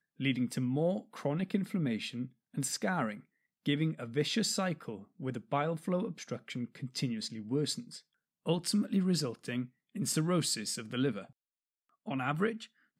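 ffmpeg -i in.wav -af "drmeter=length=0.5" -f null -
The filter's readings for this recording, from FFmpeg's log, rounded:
Channel 1: DR: 9.7
Overall DR: 9.7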